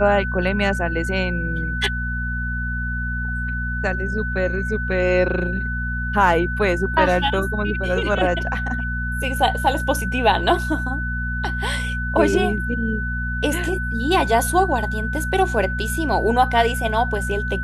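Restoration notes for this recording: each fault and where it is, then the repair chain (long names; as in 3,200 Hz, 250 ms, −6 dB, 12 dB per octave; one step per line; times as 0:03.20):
mains hum 60 Hz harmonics 4 −26 dBFS
whistle 1,500 Hz −26 dBFS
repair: hum removal 60 Hz, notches 4
notch filter 1,500 Hz, Q 30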